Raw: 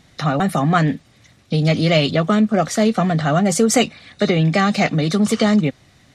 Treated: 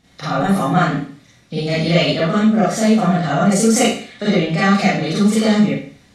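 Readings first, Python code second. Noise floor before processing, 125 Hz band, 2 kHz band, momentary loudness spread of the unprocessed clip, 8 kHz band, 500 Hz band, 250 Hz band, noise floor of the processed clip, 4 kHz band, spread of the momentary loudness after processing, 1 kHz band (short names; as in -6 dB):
-53 dBFS, -1.0 dB, +1.5 dB, 6 LU, +1.5 dB, +0.5 dB, +2.0 dB, -51 dBFS, +1.0 dB, 9 LU, +1.5 dB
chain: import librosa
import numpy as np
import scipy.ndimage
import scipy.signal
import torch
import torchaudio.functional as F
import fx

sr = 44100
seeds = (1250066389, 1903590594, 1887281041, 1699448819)

y = fx.rev_schroeder(x, sr, rt60_s=0.47, comb_ms=32, drr_db=-8.5)
y = y * librosa.db_to_amplitude(-8.0)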